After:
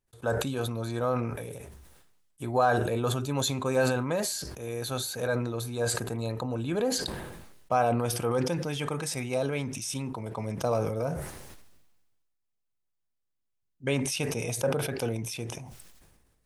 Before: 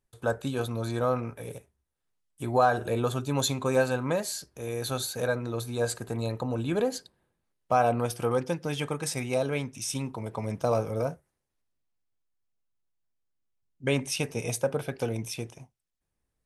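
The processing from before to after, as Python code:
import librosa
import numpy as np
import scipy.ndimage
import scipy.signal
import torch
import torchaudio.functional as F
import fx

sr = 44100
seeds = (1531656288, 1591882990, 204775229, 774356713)

y = fx.sustainer(x, sr, db_per_s=38.0)
y = F.gain(torch.from_numpy(y), -2.0).numpy()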